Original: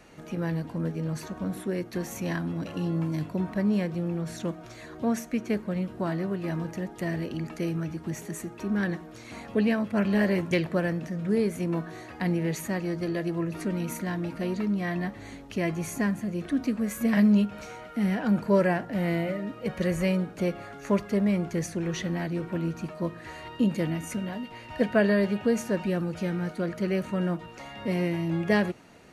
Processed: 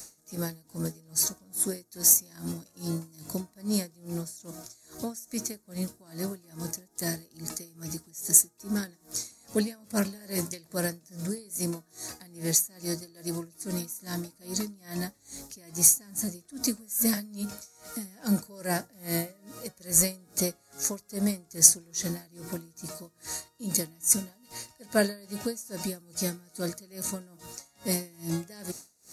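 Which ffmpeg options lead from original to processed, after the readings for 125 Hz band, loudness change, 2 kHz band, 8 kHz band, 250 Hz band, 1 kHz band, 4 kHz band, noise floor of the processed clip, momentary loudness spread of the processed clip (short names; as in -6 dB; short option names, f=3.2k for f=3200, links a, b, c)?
-7.5 dB, 0.0 dB, -7.5 dB, +19.5 dB, -7.5 dB, -7.0 dB, +5.5 dB, -63 dBFS, 19 LU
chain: -af "aexciter=amount=12:drive=8.6:freq=4.6k,aeval=exprs='val(0)*pow(10,-27*(0.5-0.5*cos(2*PI*2.4*n/s))/20)':c=same,volume=-1dB"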